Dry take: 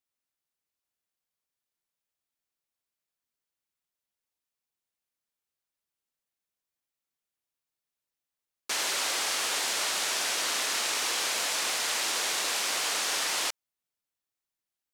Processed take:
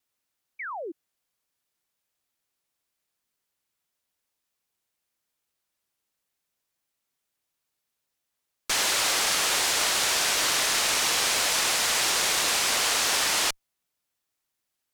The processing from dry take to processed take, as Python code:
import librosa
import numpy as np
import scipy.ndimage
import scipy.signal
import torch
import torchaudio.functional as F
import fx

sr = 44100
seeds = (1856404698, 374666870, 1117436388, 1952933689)

y = fx.diode_clip(x, sr, knee_db=-32.0)
y = fx.vibrato(y, sr, rate_hz=0.44, depth_cents=7.3)
y = fx.spec_paint(y, sr, seeds[0], shape='fall', start_s=0.59, length_s=0.33, low_hz=300.0, high_hz=2400.0, level_db=-42.0)
y = y * 10.0 ** (7.5 / 20.0)